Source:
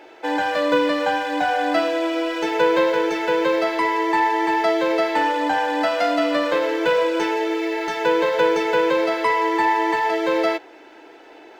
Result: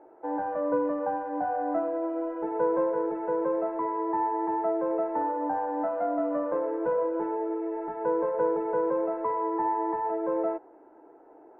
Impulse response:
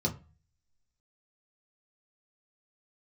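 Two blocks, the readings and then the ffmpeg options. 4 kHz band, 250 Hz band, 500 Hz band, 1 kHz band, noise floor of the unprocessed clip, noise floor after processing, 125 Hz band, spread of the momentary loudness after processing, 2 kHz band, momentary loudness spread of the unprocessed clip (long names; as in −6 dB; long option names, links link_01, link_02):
below −40 dB, −7.5 dB, −7.5 dB, −8.5 dB, −45 dBFS, −54 dBFS, can't be measured, 4 LU, −22.5 dB, 4 LU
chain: -af "lowpass=frequency=1100:width=0.5412,lowpass=frequency=1100:width=1.3066,volume=-7.5dB"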